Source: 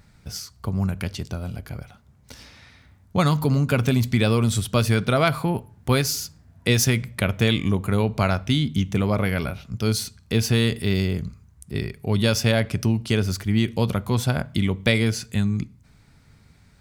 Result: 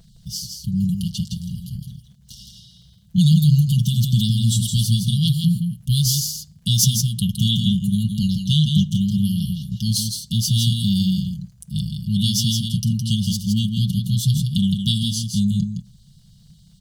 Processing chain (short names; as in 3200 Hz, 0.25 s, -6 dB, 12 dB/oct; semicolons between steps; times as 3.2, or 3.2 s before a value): brick-wall FIR band-stop 230–2800 Hz; crackle 46/s -55 dBFS; comb 5.9 ms; small resonant body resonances 470/670/1600 Hz, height 8 dB; on a send: echo 0.164 s -5.5 dB; on the sum: gain +3 dB